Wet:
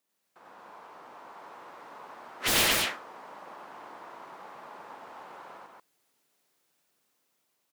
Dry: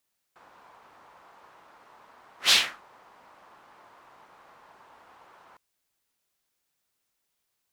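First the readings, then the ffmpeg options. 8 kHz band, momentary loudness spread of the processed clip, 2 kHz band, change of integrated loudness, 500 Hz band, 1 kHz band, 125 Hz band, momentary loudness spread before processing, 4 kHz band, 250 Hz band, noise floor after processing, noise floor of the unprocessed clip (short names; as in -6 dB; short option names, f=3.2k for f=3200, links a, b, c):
+2.0 dB, 12 LU, +0.5 dB, -3.0 dB, +9.5 dB, +5.0 dB, n/a, 9 LU, -4.0 dB, +12.0 dB, -77 dBFS, -79 dBFS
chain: -filter_complex "[0:a]highpass=190,aeval=exprs='0.0794*(abs(mod(val(0)/0.0794+3,4)-2)-1)':c=same,asplit=2[a][b];[b]aecho=0:1:93.29|230.3:1|0.794[c];[a][c]amix=inputs=2:normalize=0,dynaudnorm=f=550:g=5:m=4dB,tiltshelf=f=970:g=3.5"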